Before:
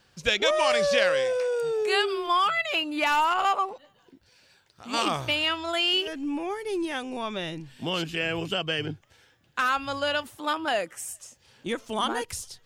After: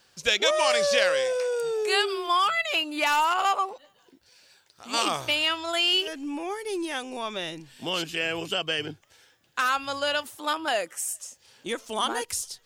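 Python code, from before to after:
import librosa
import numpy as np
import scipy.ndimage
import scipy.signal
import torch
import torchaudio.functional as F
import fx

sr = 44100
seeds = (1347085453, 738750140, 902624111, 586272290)

y = fx.bass_treble(x, sr, bass_db=-8, treble_db=6)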